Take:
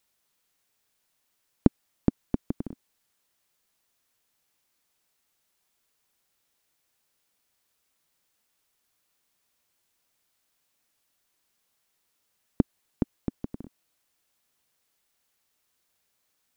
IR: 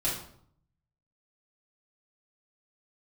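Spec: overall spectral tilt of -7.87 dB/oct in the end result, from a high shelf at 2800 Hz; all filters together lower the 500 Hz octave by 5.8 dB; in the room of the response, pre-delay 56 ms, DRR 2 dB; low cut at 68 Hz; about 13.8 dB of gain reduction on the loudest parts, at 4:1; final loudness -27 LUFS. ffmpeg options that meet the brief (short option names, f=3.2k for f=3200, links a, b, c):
-filter_complex "[0:a]highpass=68,equalizer=f=500:t=o:g=-8.5,highshelf=f=2.8k:g=-8.5,acompressor=threshold=-35dB:ratio=4,asplit=2[a][b];[1:a]atrim=start_sample=2205,adelay=56[c];[b][c]afir=irnorm=-1:irlink=0,volume=-9.5dB[d];[a][d]amix=inputs=2:normalize=0,volume=15dB"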